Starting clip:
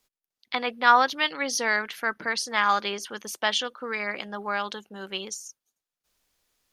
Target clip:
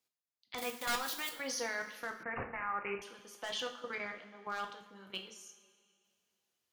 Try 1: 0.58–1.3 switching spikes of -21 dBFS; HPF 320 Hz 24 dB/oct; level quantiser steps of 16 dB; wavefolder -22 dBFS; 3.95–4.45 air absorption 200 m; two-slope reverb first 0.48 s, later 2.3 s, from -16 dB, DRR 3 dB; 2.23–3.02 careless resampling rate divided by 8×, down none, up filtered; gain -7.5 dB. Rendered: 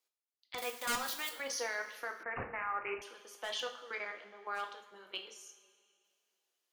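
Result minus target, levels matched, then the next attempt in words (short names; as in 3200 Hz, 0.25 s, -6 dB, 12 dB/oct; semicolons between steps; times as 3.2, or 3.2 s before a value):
250 Hz band -5.0 dB
0.58–1.3 switching spikes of -21 dBFS; HPF 81 Hz 24 dB/oct; level quantiser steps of 16 dB; wavefolder -22 dBFS; 3.95–4.45 air absorption 200 m; two-slope reverb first 0.48 s, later 2.3 s, from -16 dB, DRR 3 dB; 2.23–3.02 careless resampling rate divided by 8×, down none, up filtered; gain -7.5 dB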